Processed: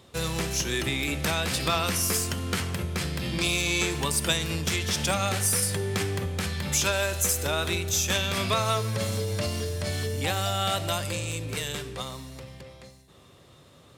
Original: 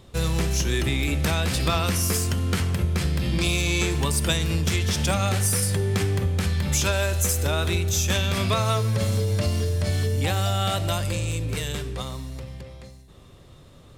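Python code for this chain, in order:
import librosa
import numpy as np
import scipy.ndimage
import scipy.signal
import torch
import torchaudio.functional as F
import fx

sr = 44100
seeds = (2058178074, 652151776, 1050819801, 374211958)

y = scipy.signal.sosfilt(scipy.signal.butter(2, 84.0, 'highpass', fs=sr, output='sos'), x)
y = fx.low_shelf(y, sr, hz=350.0, db=-6.0)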